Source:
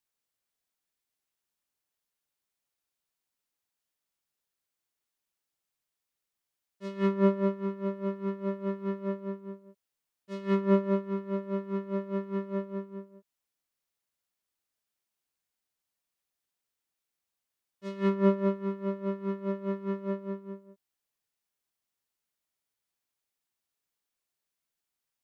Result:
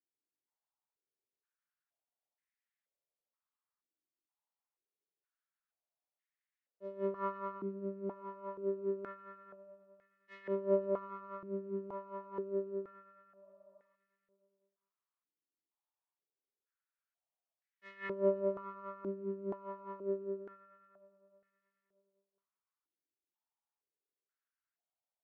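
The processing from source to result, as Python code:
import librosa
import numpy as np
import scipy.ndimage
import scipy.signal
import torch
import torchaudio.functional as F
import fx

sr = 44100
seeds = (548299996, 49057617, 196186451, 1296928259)

p1 = x + fx.echo_feedback(x, sr, ms=312, feedback_pct=55, wet_db=-13.5, dry=0)
p2 = fx.spec_repair(p1, sr, seeds[0], start_s=13.45, length_s=0.48, low_hz=570.0, high_hz=1300.0, source='before')
p3 = fx.filter_held_bandpass(p2, sr, hz=2.1, low_hz=320.0, high_hz=1900.0)
y = F.gain(torch.from_numpy(p3), 2.5).numpy()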